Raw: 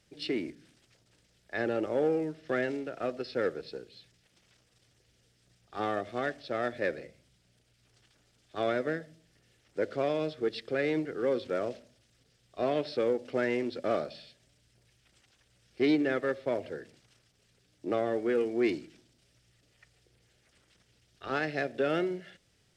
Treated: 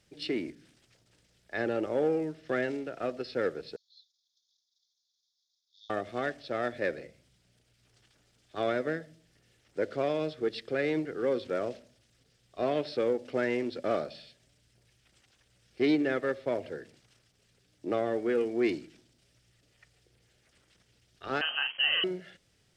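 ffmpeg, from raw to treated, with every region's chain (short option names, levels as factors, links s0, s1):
-filter_complex "[0:a]asettb=1/sr,asplit=3[s0][s1][s2];[s0]atrim=end=3.764[s3];[s1]atrim=start=3.76:end=5.9,asetpts=PTS-STARTPTS,afade=t=in:d=0.004:c=qsin,afade=t=out:st=2.136:d=0.004:c=qsin,asuperpass=centerf=4900:order=20:qfactor=1.4,aemphasis=mode=reproduction:type=50fm[s4];[s2]atrim=start=5.896[s5];[s3][s4]acrossfade=d=0.004:c1=hsin:c2=qsin[s6];[s6][s5]acrossfade=d=0.004:c1=qsin:c2=hsin,asettb=1/sr,asplit=3[s7][s8][s9];[s7]atrim=end=21.414[s10];[s8]atrim=start=21.41:end=22.04,asetpts=PTS-STARTPTS,afade=t=in:d=0.004:c=qsin,afade=t=out:st=0.626:d=0.004:c=qsin,aeval=exprs='val(0)*gte(abs(val(0)),0.00708)':c=same,asplit=2[s11][s12];[s12]adelay=39,volume=0.473[s13];[s11][s13]amix=inputs=2:normalize=0,atrim=end_sample=27783,lowpass=f=2800:t=q:w=0.5098,lowpass=f=2800:t=q:w=0.6013,lowpass=f=2800:t=q:w=0.9,lowpass=f=2800:t=q:w=2.563,afreqshift=-3300[s14];[s9]atrim=start=22.036[s15];[s10][s14]acrossfade=d=0.004:c1=hsin:c2=qsin[s16];[s16][s15]acrossfade=d=0.004:c1=qsin:c2=hsin"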